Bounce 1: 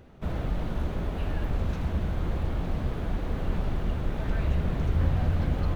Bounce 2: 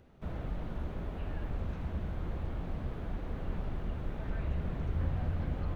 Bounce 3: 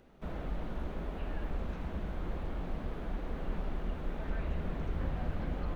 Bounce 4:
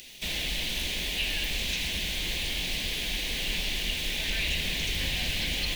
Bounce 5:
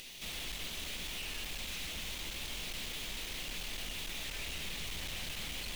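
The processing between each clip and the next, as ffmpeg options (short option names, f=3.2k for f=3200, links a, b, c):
-filter_complex "[0:a]acrossover=split=3100[a][b];[b]acompressor=threshold=-60dB:ratio=4:attack=1:release=60[c];[a][c]amix=inputs=2:normalize=0,volume=-8dB"
-af "equalizer=f=100:t=o:w=0.71:g=-14.5,volume=2dB"
-af "aexciter=amount=15.1:drive=9.8:freq=2.2k"
-af "aeval=exprs='(tanh(112*val(0)+0.55)-tanh(0.55))/112':c=same,volume=1dB"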